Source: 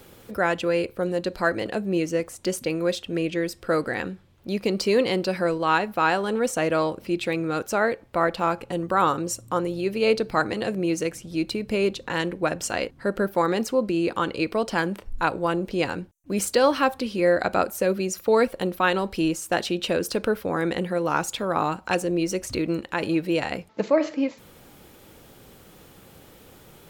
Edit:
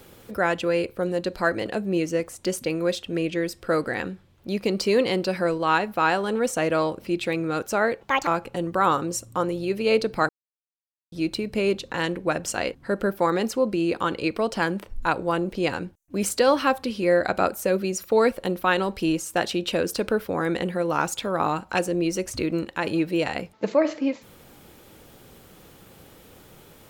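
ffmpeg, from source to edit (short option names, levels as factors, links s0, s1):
-filter_complex "[0:a]asplit=5[s0][s1][s2][s3][s4];[s0]atrim=end=8.014[s5];[s1]atrim=start=8.01:end=8.43,asetpts=PTS-STARTPTS,asetrate=71001,aresample=44100,atrim=end_sample=11504,asetpts=PTS-STARTPTS[s6];[s2]atrim=start=8.426:end=10.45,asetpts=PTS-STARTPTS,afade=t=out:st=2.02:d=0.004:c=hsin[s7];[s3]atrim=start=10.45:end=11.28,asetpts=PTS-STARTPTS,volume=0[s8];[s4]atrim=start=11.28,asetpts=PTS-STARTPTS,afade=t=in:d=0.004:c=hsin[s9];[s5][s6]acrossfade=d=0.004:c1=hsin:c2=hsin[s10];[s7][s8][s9]concat=n=3:v=0:a=1[s11];[s10][s11]acrossfade=d=0.004:c1=hsin:c2=hsin"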